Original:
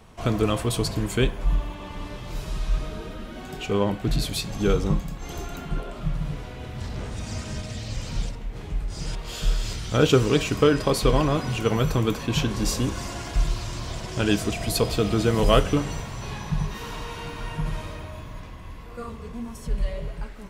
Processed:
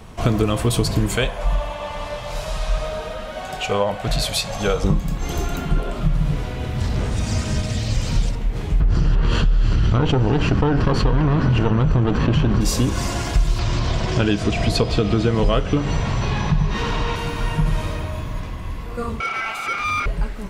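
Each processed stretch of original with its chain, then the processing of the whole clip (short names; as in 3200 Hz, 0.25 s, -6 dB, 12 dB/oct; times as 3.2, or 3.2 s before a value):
1.16–4.84 LPF 12000 Hz + resonant low shelf 450 Hz -8.5 dB, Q 3
8.8–12.61 minimum comb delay 0.69 ms + tape spacing loss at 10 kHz 30 dB + fast leveller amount 70%
13.59–17.16 LPF 4900 Hz + upward compressor, threshold -24 dBFS
19.2–20.06 resonant high-pass 480 Hz, resonance Q 3.4 + ring modulator 1800 Hz + overdrive pedal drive 22 dB, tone 1500 Hz, clips at -20 dBFS
whole clip: compressor, threshold -24 dBFS; low shelf 220 Hz +3.5 dB; gain +8 dB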